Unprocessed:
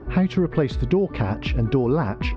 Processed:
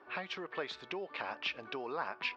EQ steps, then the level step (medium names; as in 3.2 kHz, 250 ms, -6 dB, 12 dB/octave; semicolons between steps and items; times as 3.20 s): band-pass 790–4000 Hz; treble shelf 2.6 kHz +9 dB; band-stop 2 kHz, Q 28; -8.0 dB